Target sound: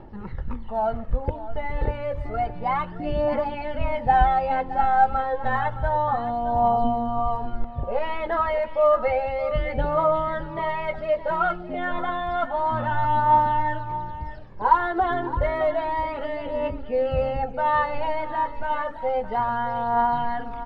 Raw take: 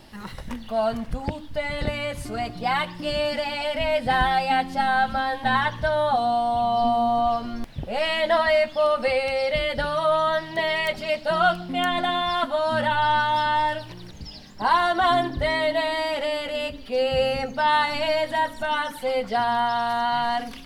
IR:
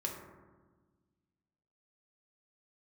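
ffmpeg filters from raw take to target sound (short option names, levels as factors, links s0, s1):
-af "lowpass=1200,aphaser=in_gain=1:out_gain=1:delay=2.5:decay=0.52:speed=0.3:type=triangular,aecho=1:1:2.3:0.35,aecho=1:1:617:0.211"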